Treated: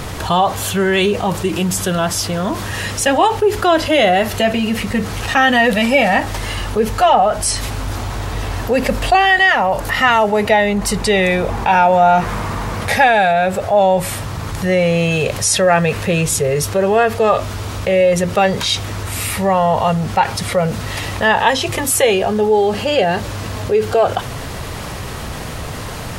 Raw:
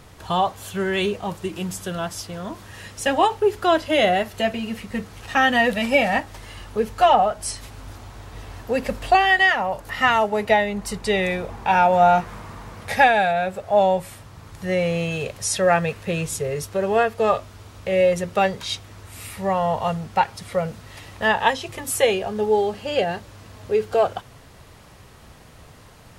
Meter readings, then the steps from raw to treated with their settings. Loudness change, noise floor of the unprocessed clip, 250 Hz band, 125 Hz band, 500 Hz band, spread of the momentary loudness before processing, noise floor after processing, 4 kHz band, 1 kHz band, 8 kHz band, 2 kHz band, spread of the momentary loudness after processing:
+6.0 dB, -47 dBFS, +8.5 dB, +10.5 dB, +6.0 dB, 18 LU, -27 dBFS, +8.0 dB, +5.5 dB, +11.0 dB, +6.0 dB, 12 LU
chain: fast leveller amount 50%; gain +2.5 dB

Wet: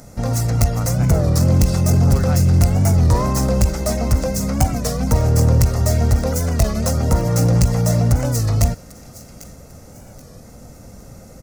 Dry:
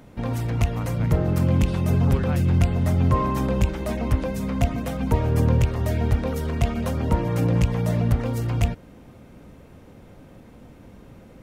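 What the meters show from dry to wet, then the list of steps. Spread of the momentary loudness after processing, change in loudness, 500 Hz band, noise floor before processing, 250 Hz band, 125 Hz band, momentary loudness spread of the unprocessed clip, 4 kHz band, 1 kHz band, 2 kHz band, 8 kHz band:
5 LU, +6.0 dB, +5.0 dB, -48 dBFS, +3.5 dB, +6.0 dB, 6 LU, +9.0 dB, +3.5 dB, +2.5 dB, +16.5 dB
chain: tracing distortion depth 0.14 ms; bell 5400 Hz -4 dB 0.29 oct; comb 1.5 ms, depth 41%; in parallel at -7 dB: wavefolder -16 dBFS; on the sum: resonant high shelf 4200 Hz +10 dB, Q 3; on a send: thin delay 0.796 s, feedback 34%, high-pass 2100 Hz, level -15 dB; on the sum: record warp 33 1/3 rpm, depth 160 cents; gain +2 dB

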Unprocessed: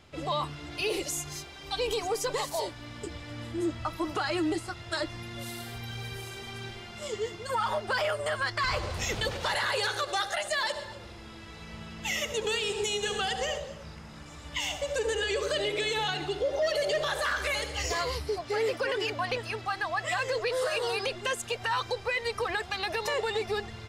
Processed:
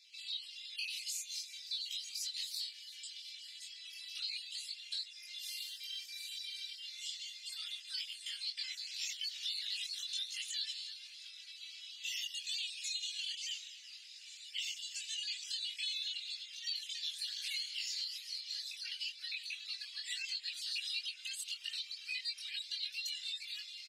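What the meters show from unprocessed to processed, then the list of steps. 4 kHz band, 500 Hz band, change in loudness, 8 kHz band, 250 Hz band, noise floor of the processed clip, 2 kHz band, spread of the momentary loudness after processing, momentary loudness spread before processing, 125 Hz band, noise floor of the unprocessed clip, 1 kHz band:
-3.0 dB, under -40 dB, -9.0 dB, -6.0 dB, under -40 dB, -53 dBFS, -15.0 dB, 8 LU, 11 LU, under -40 dB, -46 dBFS, under -40 dB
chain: random spectral dropouts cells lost 32%; steep high-pass 2500 Hz 36 dB/oct; bell 4300 Hz +9.5 dB 0.76 oct; compressor 3:1, threshold -37 dBFS, peak gain reduction 9.5 dB; chorus voices 4, 0.18 Hz, delay 22 ms, depth 2.8 ms; frequency-shifting echo 0.358 s, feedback 62%, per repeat -150 Hz, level -17.5 dB; gain +1 dB

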